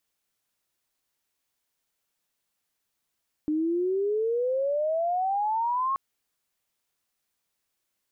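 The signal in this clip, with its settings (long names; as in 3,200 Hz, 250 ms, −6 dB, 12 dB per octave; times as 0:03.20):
glide logarithmic 300 Hz → 1,100 Hz −23 dBFS → −23.5 dBFS 2.48 s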